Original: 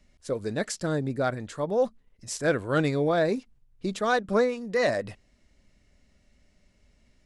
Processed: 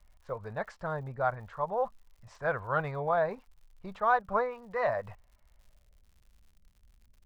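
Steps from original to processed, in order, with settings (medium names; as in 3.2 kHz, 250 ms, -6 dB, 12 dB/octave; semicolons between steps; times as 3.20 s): low-pass sweep 960 Hz -> 300 Hz, 5.56–6.15 s; amplifier tone stack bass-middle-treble 10-0-10; crackle 120 per s -61 dBFS; trim +7.5 dB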